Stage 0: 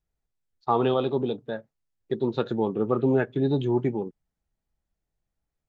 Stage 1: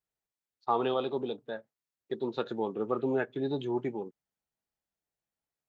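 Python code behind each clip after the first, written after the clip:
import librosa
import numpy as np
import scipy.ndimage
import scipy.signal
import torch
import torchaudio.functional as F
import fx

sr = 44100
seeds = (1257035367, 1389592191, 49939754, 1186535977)

y = fx.highpass(x, sr, hz=400.0, slope=6)
y = F.gain(torch.from_numpy(y), -3.5).numpy()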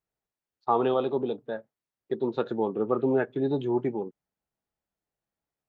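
y = fx.high_shelf(x, sr, hz=2200.0, db=-11.0)
y = F.gain(torch.from_numpy(y), 5.5).numpy()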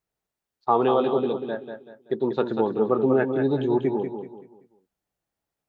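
y = fx.echo_feedback(x, sr, ms=191, feedback_pct=35, wet_db=-7.0)
y = F.gain(torch.from_numpy(y), 3.5).numpy()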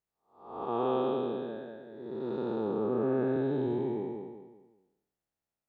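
y = fx.spec_blur(x, sr, span_ms=363.0)
y = F.gain(torch.from_numpy(y), -5.5).numpy()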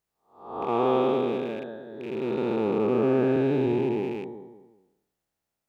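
y = fx.rattle_buzz(x, sr, strikes_db=-45.0, level_db=-40.0)
y = F.gain(torch.from_numpy(y), 6.5).numpy()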